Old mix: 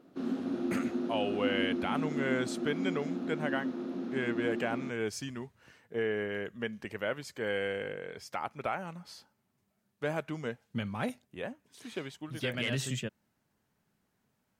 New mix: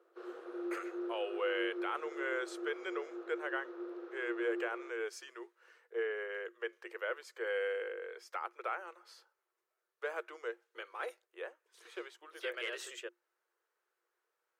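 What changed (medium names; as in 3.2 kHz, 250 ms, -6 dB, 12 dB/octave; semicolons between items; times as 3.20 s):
background: add treble shelf 3.7 kHz -11 dB; master: add rippled Chebyshev high-pass 340 Hz, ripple 9 dB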